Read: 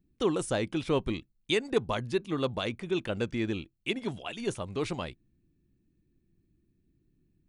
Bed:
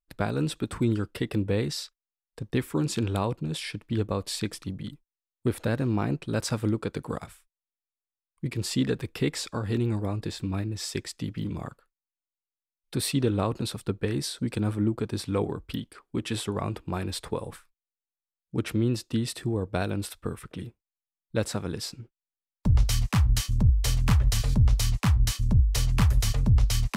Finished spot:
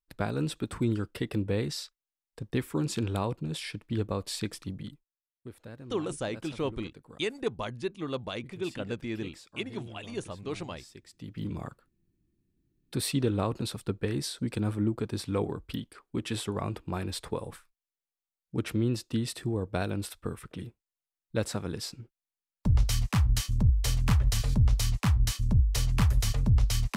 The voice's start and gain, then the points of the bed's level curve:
5.70 s, -4.0 dB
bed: 4.81 s -3 dB
5.43 s -18.5 dB
11.03 s -18.5 dB
11.45 s -2.5 dB

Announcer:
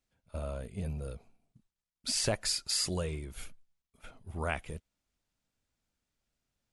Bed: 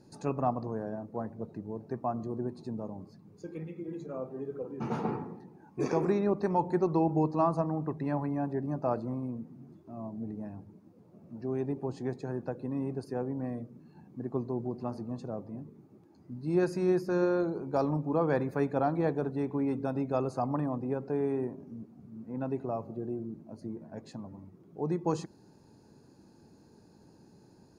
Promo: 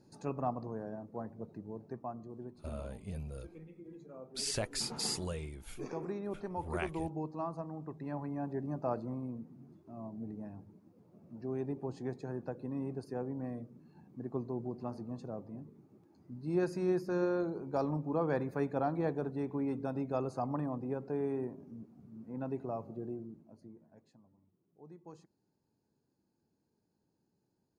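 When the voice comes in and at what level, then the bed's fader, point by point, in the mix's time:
2.30 s, -5.0 dB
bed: 1.82 s -5.5 dB
2.23 s -11.5 dB
7.7 s -11.5 dB
8.59 s -4.5 dB
23.07 s -4.5 dB
24.23 s -22 dB

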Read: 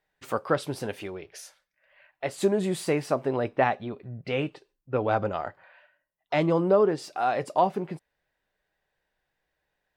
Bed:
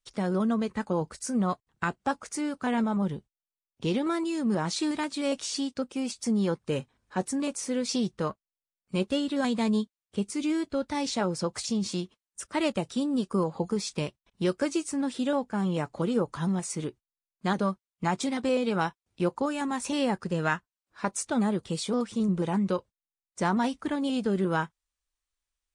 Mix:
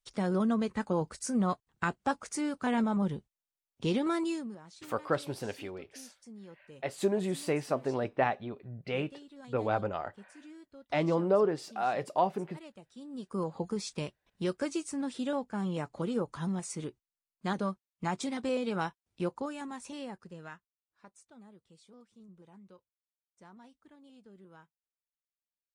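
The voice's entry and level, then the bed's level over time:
4.60 s, -5.0 dB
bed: 4.32 s -2 dB
4.59 s -23 dB
12.88 s -23 dB
13.45 s -5.5 dB
19.2 s -5.5 dB
21.31 s -28.5 dB

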